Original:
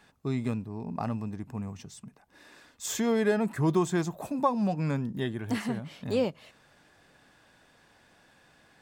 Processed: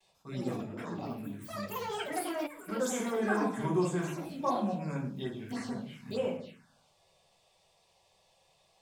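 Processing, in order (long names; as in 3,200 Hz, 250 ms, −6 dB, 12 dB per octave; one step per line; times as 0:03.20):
spectral tilt +2 dB per octave
notch filter 1,800 Hz, Q 20
rectangular room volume 82 cubic metres, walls mixed, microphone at 1.1 metres
phaser swept by the level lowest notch 240 Hz, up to 4,600 Hz, full sweep at −22.5 dBFS
noise gate with hold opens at −55 dBFS
high-shelf EQ 9,800 Hz −11 dB
delay with pitch and tempo change per echo 142 ms, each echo +6 semitones, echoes 3
gain on a spectral selection 0:02.47–0:02.69, 210–7,100 Hz −16 dB
level −8 dB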